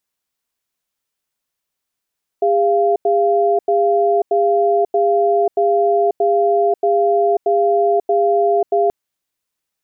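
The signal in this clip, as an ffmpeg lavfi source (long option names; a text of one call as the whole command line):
ffmpeg -f lavfi -i "aevalsrc='0.188*(sin(2*PI*405*t)+sin(2*PI*691*t))*clip(min(mod(t,0.63),0.54-mod(t,0.63))/0.005,0,1)':duration=6.48:sample_rate=44100" out.wav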